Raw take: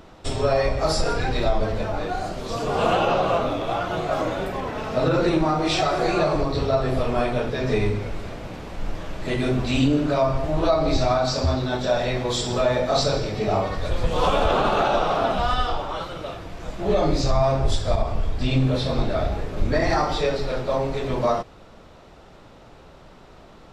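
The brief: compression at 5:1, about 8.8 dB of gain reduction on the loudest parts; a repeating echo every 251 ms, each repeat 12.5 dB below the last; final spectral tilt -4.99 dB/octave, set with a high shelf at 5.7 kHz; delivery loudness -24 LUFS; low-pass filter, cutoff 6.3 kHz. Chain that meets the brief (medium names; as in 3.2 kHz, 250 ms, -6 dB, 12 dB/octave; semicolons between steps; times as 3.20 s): low-pass 6.3 kHz; treble shelf 5.7 kHz -5 dB; compression 5:1, threshold -25 dBFS; feedback delay 251 ms, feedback 24%, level -12.5 dB; trim +5.5 dB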